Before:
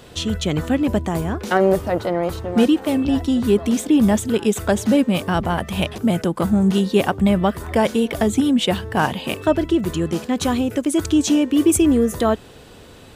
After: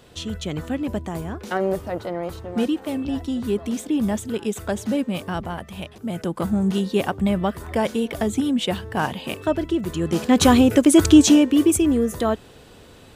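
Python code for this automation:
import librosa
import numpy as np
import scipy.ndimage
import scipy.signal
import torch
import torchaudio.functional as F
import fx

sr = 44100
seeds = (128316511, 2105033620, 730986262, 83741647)

y = fx.gain(x, sr, db=fx.line((5.33, -7.0), (5.96, -13.5), (6.3, -4.5), (9.93, -4.5), (10.36, 6.0), (11.14, 6.0), (11.79, -3.5)))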